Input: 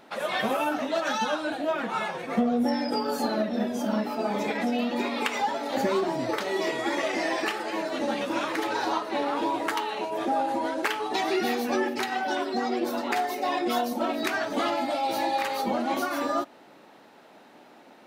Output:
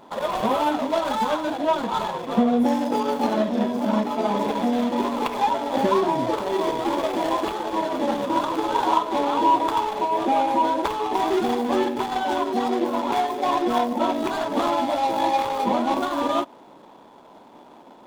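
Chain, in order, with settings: median filter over 25 samples; small resonant body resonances 990/3400 Hz, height 11 dB, ringing for 25 ms; trim +5 dB

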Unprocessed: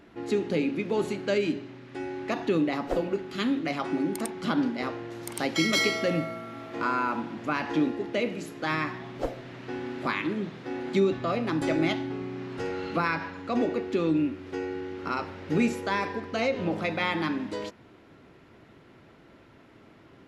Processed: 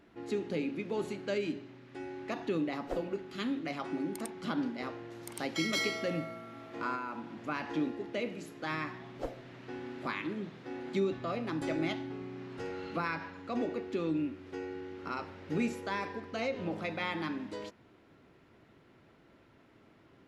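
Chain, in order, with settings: 6.95–7.38 s: compression 2:1, threshold -31 dBFS, peak gain reduction 4.5 dB; trim -7.5 dB

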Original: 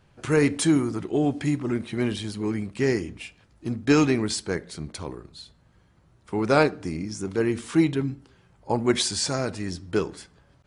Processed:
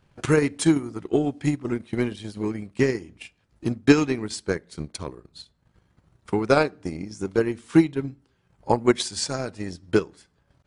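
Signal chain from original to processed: transient shaper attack +10 dB, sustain -7 dB; trim -3.5 dB

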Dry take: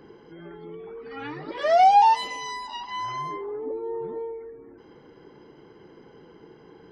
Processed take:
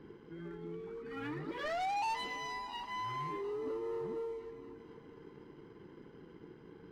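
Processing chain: low-pass 1.5 kHz 6 dB/octave; peaking EQ 680 Hz -14 dB 0.81 oct; waveshaping leveller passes 1; saturation -29 dBFS, distortion -9 dB; multi-head delay 236 ms, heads all three, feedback 59%, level -24 dB; trim -4 dB

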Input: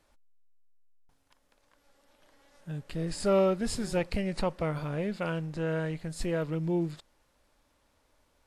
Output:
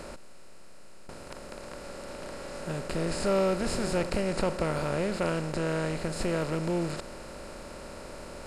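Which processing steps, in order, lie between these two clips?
spectral levelling over time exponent 0.4; trim -3 dB

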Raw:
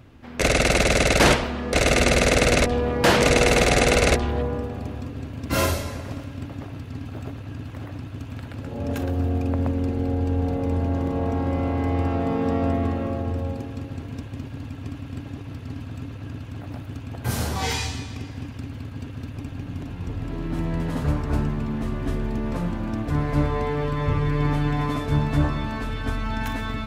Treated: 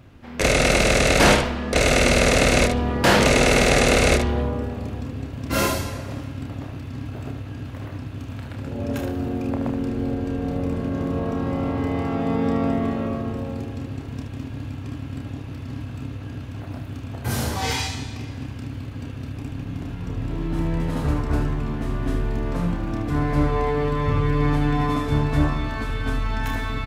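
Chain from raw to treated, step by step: early reflections 30 ms -6 dB, 75 ms -7.5 dB

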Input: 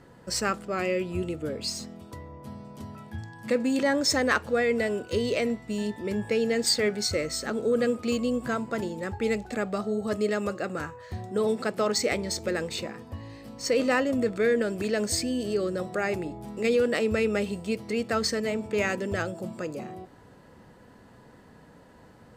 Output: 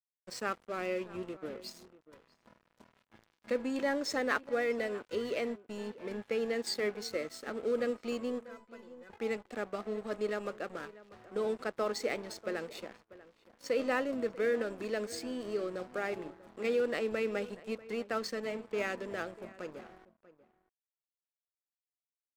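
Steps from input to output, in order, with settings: high-pass 250 Hz 12 dB/octave; treble shelf 5 kHz -11 dB; crossover distortion -42 dBFS; 8.43–9.10 s: feedback comb 500 Hz, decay 0.16 s, harmonics all, mix 90%; echo from a far wall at 110 m, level -18 dB; trim -5.5 dB

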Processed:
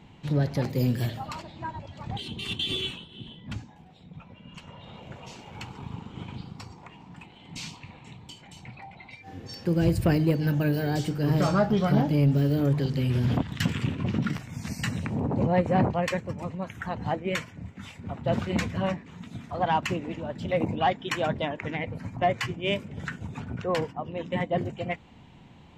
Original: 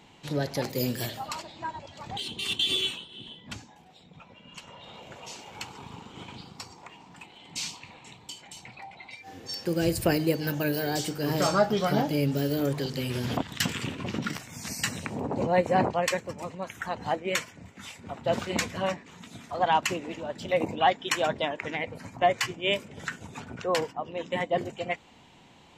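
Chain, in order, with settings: tone controls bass +11 dB, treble -8 dB; saturation -11.5 dBFS, distortion -22 dB; trim -1 dB

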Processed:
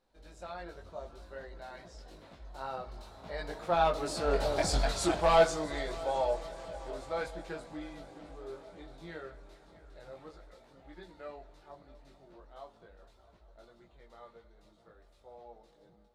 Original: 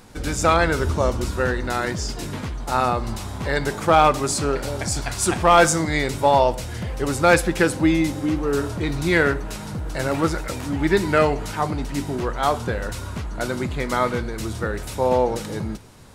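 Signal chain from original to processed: Doppler pass-by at 4.67 s, 17 m/s, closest 4.5 m; treble shelf 2.8 kHz -9.5 dB; hard clipper -18 dBFS, distortion -21 dB; fifteen-band graphic EQ 100 Hz -11 dB, 250 Hz -5 dB, 630 Hz +8 dB, 4 kHz +10 dB; on a send: multi-head delay 218 ms, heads all three, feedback 68%, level -23 dB; on the sum: chorus voices 6, 0.48 Hz, delay 20 ms, depth 3.2 ms

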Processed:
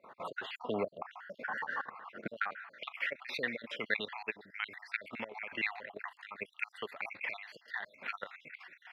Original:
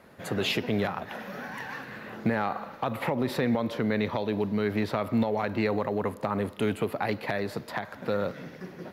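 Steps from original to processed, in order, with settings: random holes in the spectrogram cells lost 58%; level held to a coarse grid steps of 14 dB; band-pass sweep 1.1 kHz -> 2.3 kHz, 2.16–2.86 s; trim +12 dB

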